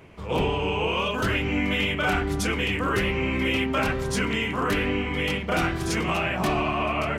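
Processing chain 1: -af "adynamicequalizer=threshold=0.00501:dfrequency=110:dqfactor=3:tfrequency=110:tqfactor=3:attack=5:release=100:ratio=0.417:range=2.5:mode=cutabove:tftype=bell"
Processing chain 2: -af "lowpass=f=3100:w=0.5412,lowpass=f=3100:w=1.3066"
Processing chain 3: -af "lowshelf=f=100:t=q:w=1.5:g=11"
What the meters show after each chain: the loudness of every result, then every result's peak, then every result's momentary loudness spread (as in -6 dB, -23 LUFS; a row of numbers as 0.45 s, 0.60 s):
-25.0 LUFS, -25.5 LUFS, -22.5 LUFS; -14.0 dBFS, -14.5 dBFS, -8.0 dBFS; 2 LU, 2 LU, 3 LU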